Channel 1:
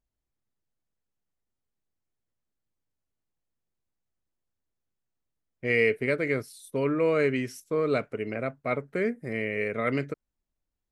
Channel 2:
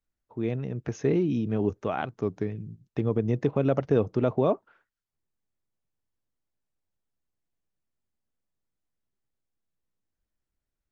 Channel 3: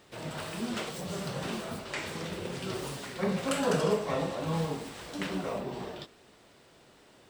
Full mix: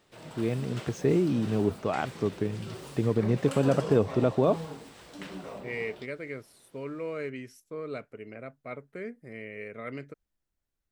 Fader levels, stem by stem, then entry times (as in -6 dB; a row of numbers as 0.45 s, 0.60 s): -11.0 dB, 0.0 dB, -7.0 dB; 0.00 s, 0.00 s, 0.00 s